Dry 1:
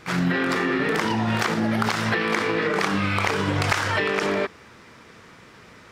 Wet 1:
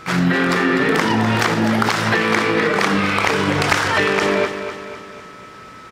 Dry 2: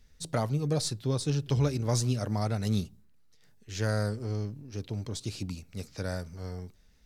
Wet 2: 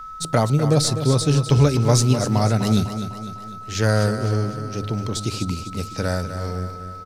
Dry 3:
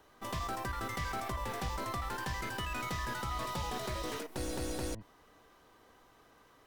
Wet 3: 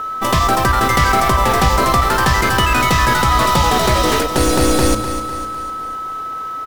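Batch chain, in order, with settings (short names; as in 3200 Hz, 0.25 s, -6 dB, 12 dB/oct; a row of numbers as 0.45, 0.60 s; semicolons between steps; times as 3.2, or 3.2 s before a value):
whine 1300 Hz -44 dBFS; notches 50/100 Hz; on a send: feedback echo 0.251 s, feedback 51%, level -10 dB; on the sum: normalise peaks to -3 dBFS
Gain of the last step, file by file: +5.5, +10.5, +22.5 dB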